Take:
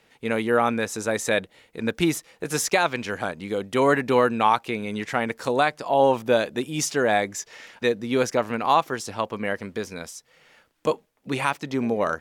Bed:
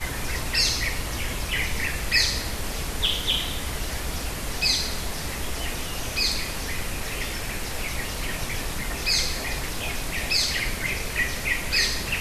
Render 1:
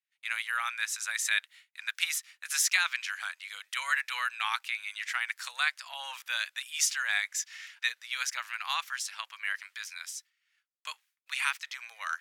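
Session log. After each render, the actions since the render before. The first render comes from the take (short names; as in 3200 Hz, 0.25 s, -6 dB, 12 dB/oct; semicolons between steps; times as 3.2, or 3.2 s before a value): expander -43 dBFS; inverse Chebyshev high-pass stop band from 340 Hz, stop band 70 dB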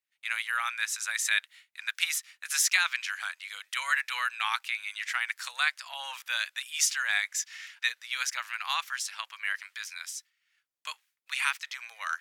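gain +1.5 dB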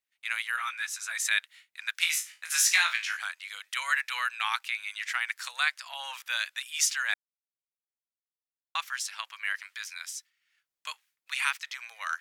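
0.56–1.2 ensemble effect; 1.99–3.17 flutter echo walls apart 3.1 m, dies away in 0.25 s; 7.14–8.75 mute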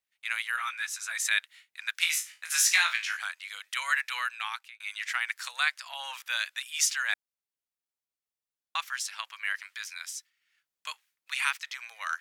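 3.93–4.8 fade out equal-power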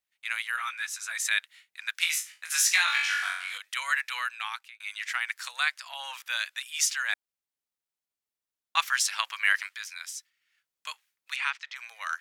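2.85–3.58 flutter echo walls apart 3.7 m, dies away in 0.71 s; 8.77–9.69 gain +8 dB; 11.36–11.76 air absorption 120 m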